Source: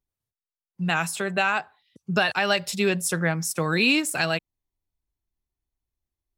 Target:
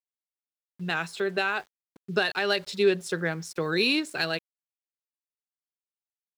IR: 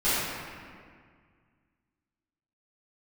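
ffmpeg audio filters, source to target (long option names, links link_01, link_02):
-af "equalizer=frequency=400:width_type=o:width=0.67:gain=12,equalizer=frequency=1600:width_type=o:width=0.67:gain=5,equalizer=frequency=4000:width_type=o:width=0.67:gain=10,adynamicsmooth=sensitivity=1:basefreq=6600,aeval=exprs='val(0)*gte(abs(val(0)),0.00891)':channel_layout=same,volume=-8.5dB"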